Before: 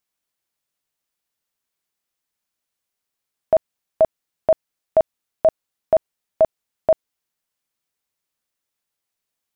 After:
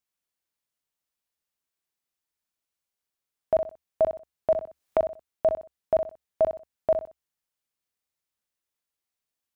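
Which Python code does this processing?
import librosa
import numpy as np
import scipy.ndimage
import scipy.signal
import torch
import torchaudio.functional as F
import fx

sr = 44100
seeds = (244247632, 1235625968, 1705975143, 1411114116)

y = fx.peak_eq(x, sr, hz=70.0, db=7.5, octaves=0.24)
y = fx.echo_feedback(y, sr, ms=62, feedback_pct=28, wet_db=-8)
y = fx.band_squash(y, sr, depth_pct=100, at=(4.52, 4.99))
y = y * 10.0 ** (-6.5 / 20.0)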